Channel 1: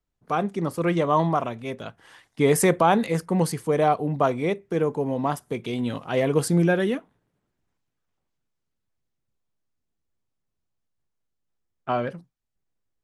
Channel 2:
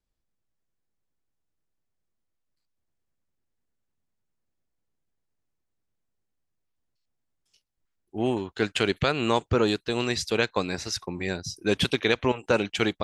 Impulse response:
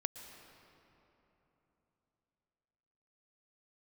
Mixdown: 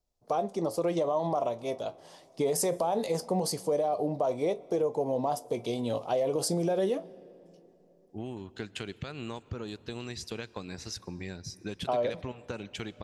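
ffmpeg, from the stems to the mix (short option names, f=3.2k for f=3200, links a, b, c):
-filter_complex "[0:a]firequalizer=gain_entry='entry(210,0);entry(600,14);entry(1500,-6);entry(4900,13);entry(8600,7)':delay=0.05:min_phase=1,alimiter=limit=-10dB:level=0:latency=1:release=40,flanger=delay=8.1:depth=3.8:regen=69:speed=0.19:shape=triangular,volume=-4.5dB,asplit=2[a][b];[b]volume=-15.5dB[c];[1:a]bass=f=250:g=7,treble=f=4k:g=3,acompressor=threshold=-25dB:ratio=10,volume=-11dB,asplit=2[d][e];[e]volume=-10dB[f];[2:a]atrim=start_sample=2205[g];[c][f]amix=inputs=2:normalize=0[h];[h][g]afir=irnorm=-1:irlink=0[i];[a][d][i]amix=inputs=3:normalize=0,acompressor=threshold=-24dB:ratio=6"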